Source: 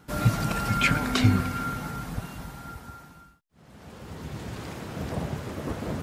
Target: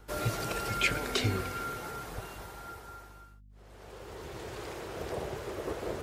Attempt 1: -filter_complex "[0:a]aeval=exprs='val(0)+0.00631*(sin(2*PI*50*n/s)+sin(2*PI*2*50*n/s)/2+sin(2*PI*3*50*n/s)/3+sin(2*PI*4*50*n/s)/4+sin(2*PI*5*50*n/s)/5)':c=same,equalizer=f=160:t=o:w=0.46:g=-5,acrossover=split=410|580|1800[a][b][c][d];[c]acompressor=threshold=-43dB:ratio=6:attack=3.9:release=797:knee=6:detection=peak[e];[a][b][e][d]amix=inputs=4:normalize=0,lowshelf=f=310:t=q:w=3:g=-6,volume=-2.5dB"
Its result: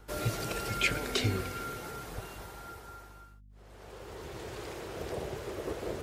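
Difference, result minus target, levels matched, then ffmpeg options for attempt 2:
compressor: peak gain reduction +6 dB
-filter_complex "[0:a]aeval=exprs='val(0)+0.00631*(sin(2*PI*50*n/s)+sin(2*PI*2*50*n/s)/2+sin(2*PI*3*50*n/s)/3+sin(2*PI*4*50*n/s)/4+sin(2*PI*5*50*n/s)/5)':c=same,equalizer=f=160:t=o:w=0.46:g=-5,acrossover=split=410|580|1800[a][b][c][d];[c]acompressor=threshold=-36dB:ratio=6:attack=3.9:release=797:knee=6:detection=peak[e];[a][b][e][d]amix=inputs=4:normalize=0,lowshelf=f=310:t=q:w=3:g=-6,volume=-2.5dB"

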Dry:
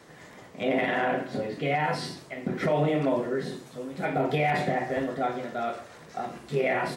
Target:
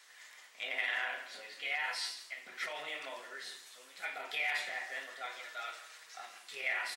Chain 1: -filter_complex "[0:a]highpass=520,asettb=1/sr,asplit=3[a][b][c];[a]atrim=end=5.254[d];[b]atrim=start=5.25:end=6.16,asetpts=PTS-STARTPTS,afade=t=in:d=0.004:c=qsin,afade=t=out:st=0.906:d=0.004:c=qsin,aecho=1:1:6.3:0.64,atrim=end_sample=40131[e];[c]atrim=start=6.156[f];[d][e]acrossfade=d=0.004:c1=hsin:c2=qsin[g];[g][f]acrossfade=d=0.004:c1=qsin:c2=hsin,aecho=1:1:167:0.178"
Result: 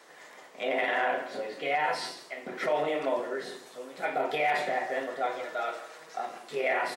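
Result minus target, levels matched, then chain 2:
500 Hz band +12.0 dB
-filter_complex "[0:a]highpass=2k,asettb=1/sr,asplit=3[a][b][c];[a]atrim=end=5.254[d];[b]atrim=start=5.25:end=6.16,asetpts=PTS-STARTPTS,afade=t=in:d=0.004:c=qsin,afade=t=out:st=0.906:d=0.004:c=qsin,aecho=1:1:6.3:0.64,atrim=end_sample=40131[e];[c]atrim=start=6.156[f];[d][e]acrossfade=d=0.004:c1=hsin:c2=qsin[g];[g][f]acrossfade=d=0.004:c1=qsin:c2=hsin,aecho=1:1:167:0.178"

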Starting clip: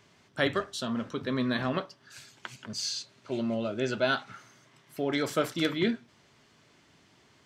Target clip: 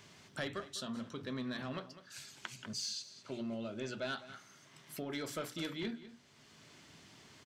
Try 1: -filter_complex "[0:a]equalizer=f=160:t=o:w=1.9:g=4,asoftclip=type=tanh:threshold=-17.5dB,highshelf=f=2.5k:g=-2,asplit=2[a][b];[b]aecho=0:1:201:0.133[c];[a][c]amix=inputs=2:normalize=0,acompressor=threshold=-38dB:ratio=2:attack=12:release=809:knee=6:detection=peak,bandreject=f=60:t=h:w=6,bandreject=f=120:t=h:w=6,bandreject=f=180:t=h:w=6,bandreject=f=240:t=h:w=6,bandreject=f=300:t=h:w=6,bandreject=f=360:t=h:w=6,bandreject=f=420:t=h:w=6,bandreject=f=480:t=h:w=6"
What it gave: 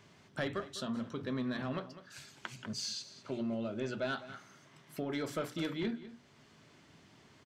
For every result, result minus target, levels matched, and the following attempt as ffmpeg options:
compressor: peak gain reduction -4.5 dB; 4000 Hz band -3.5 dB
-filter_complex "[0:a]equalizer=f=160:t=o:w=1.9:g=4,asoftclip=type=tanh:threshold=-17.5dB,highshelf=f=2.5k:g=-2,asplit=2[a][b];[b]aecho=0:1:201:0.133[c];[a][c]amix=inputs=2:normalize=0,acompressor=threshold=-46.5dB:ratio=2:attack=12:release=809:knee=6:detection=peak,bandreject=f=60:t=h:w=6,bandreject=f=120:t=h:w=6,bandreject=f=180:t=h:w=6,bandreject=f=240:t=h:w=6,bandreject=f=300:t=h:w=6,bandreject=f=360:t=h:w=6,bandreject=f=420:t=h:w=6,bandreject=f=480:t=h:w=6"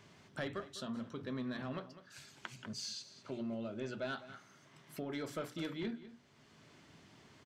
4000 Hz band -3.5 dB
-filter_complex "[0:a]equalizer=f=160:t=o:w=1.9:g=4,asoftclip=type=tanh:threshold=-17.5dB,highshelf=f=2.5k:g=6.5,asplit=2[a][b];[b]aecho=0:1:201:0.133[c];[a][c]amix=inputs=2:normalize=0,acompressor=threshold=-46.5dB:ratio=2:attack=12:release=809:knee=6:detection=peak,bandreject=f=60:t=h:w=6,bandreject=f=120:t=h:w=6,bandreject=f=180:t=h:w=6,bandreject=f=240:t=h:w=6,bandreject=f=300:t=h:w=6,bandreject=f=360:t=h:w=6,bandreject=f=420:t=h:w=6,bandreject=f=480:t=h:w=6"

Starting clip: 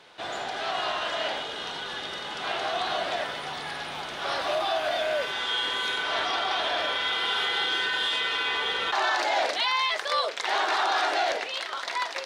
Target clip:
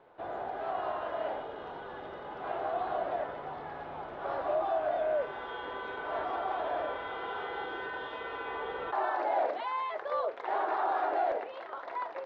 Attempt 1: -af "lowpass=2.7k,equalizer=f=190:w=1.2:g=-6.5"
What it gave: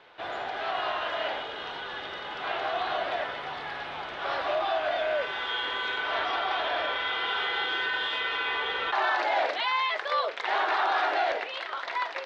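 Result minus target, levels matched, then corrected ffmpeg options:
2000 Hz band +6.5 dB
-af "lowpass=820,equalizer=f=190:w=1.2:g=-6.5"

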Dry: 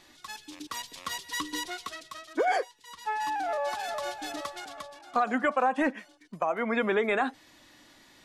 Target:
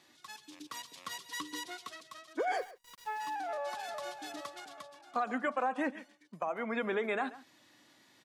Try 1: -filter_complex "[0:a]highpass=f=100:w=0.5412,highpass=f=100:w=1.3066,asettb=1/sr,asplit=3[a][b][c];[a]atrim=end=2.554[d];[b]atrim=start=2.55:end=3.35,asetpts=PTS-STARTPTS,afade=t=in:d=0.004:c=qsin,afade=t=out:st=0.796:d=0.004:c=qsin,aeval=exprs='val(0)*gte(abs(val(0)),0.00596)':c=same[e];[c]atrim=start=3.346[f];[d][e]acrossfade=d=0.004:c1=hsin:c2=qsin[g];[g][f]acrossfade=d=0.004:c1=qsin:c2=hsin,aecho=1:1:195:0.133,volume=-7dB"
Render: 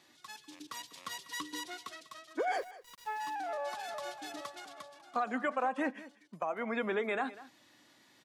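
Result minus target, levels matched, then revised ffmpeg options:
echo 58 ms late
-filter_complex "[0:a]highpass=f=100:w=0.5412,highpass=f=100:w=1.3066,asettb=1/sr,asplit=3[a][b][c];[a]atrim=end=2.554[d];[b]atrim=start=2.55:end=3.35,asetpts=PTS-STARTPTS,afade=t=in:d=0.004:c=qsin,afade=t=out:st=0.796:d=0.004:c=qsin,aeval=exprs='val(0)*gte(abs(val(0)),0.00596)':c=same[e];[c]atrim=start=3.346[f];[d][e]acrossfade=d=0.004:c1=hsin:c2=qsin[g];[g][f]acrossfade=d=0.004:c1=qsin:c2=hsin,aecho=1:1:137:0.133,volume=-7dB"

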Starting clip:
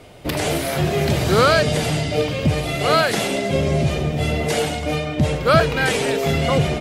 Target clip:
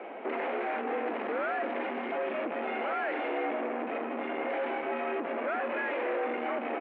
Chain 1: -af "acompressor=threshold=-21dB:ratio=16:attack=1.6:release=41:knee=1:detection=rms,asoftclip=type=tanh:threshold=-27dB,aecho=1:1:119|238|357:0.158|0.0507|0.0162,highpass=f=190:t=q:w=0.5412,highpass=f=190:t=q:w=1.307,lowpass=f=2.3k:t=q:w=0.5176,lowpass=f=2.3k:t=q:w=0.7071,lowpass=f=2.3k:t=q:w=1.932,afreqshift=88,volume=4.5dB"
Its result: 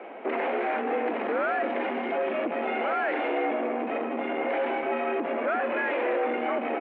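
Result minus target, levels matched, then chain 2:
soft clip: distortion -4 dB
-af "acompressor=threshold=-21dB:ratio=16:attack=1.6:release=41:knee=1:detection=rms,asoftclip=type=tanh:threshold=-33.5dB,aecho=1:1:119|238|357:0.158|0.0507|0.0162,highpass=f=190:t=q:w=0.5412,highpass=f=190:t=q:w=1.307,lowpass=f=2.3k:t=q:w=0.5176,lowpass=f=2.3k:t=q:w=0.7071,lowpass=f=2.3k:t=q:w=1.932,afreqshift=88,volume=4.5dB"

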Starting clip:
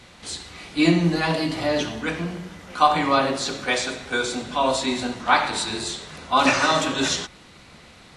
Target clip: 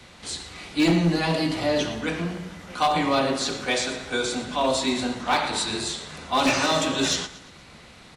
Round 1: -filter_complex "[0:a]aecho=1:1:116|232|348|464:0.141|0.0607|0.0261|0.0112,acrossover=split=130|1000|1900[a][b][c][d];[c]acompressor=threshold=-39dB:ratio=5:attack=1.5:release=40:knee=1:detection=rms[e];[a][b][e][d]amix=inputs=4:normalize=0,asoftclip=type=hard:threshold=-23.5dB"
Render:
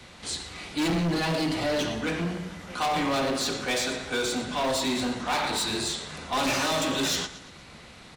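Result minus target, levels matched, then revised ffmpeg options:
hard clip: distortion +9 dB
-filter_complex "[0:a]aecho=1:1:116|232|348|464:0.141|0.0607|0.0261|0.0112,acrossover=split=130|1000|1900[a][b][c][d];[c]acompressor=threshold=-39dB:ratio=5:attack=1.5:release=40:knee=1:detection=rms[e];[a][b][e][d]amix=inputs=4:normalize=0,asoftclip=type=hard:threshold=-15dB"

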